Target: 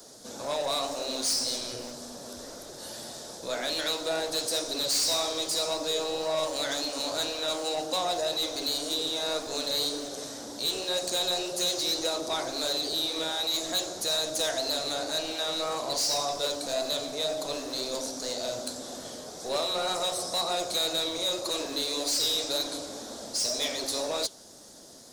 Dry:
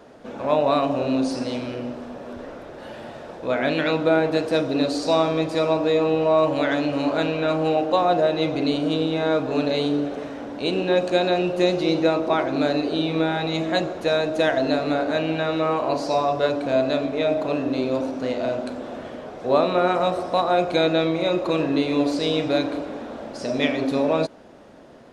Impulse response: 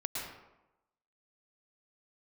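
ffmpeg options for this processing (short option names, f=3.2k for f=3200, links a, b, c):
-filter_complex "[0:a]acrossover=split=190|360|2900[a][b][c][d];[a]aeval=exprs='(mod(66.8*val(0)+1,2)-1)/66.8':c=same[e];[b]acompressor=threshold=-41dB:ratio=6[f];[d]aexciter=amount=13.1:drive=7.6:freq=3.8k[g];[e][f][c][g]amix=inputs=4:normalize=0,asoftclip=type=tanh:threshold=-16dB,flanger=delay=2.2:depth=9.9:regen=69:speed=1.9:shape=triangular,volume=-3dB"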